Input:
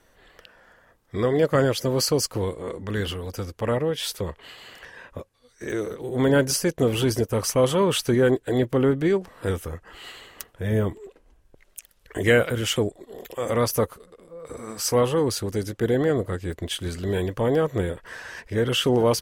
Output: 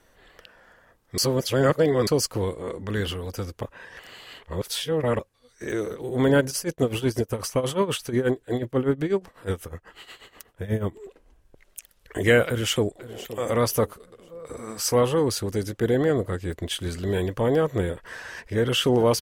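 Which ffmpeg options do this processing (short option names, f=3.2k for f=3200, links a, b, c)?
-filter_complex "[0:a]asplit=3[a][b][c];[a]afade=t=out:st=6.4:d=0.02[d];[b]tremolo=f=8.2:d=0.81,afade=t=in:st=6.4:d=0.02,afade=t=out:st=10.95:d=0.02[e];[c]afade=t=in:st=10.95:d=0.02[f];[d][e][f]amix=inputs=3:normalize=0,asplit=2[g][h];[h]afade=t=in:st=12.47:d=0.01,afade=t=out:st=13.34:d=0.01,aecho=0:1:520|1040|1560:0.158489|0.0475468|0.014264[i];[g][i]amix=inputs=2:normalize=0,asplit=5[j][k][l][m][n];[j]atrim=end=1.182[o];[k]atrim=start=1.178:end=2.072,asetpts=PTS-STARTPTS,areverse[p];[l]atrim=start=2.068:end=3.632[q];[m]atrim=start=3.628:end=5.192,asetpts=PTS-STARTPTS,areverse[r];[n]atrim=start=5.188[s];[o][p]acrossfade=d=0.004:c1=hsin:c2=hsin[t];[t][q]acrossfade=d=0.004:c1=hsin:c2=hsin[u];[u][r]acrossfade=d=0.004:c1=hsin:c2=hsin[v];[v][s]acrossfade=d=0.004:c1=hsin:c2=hsin"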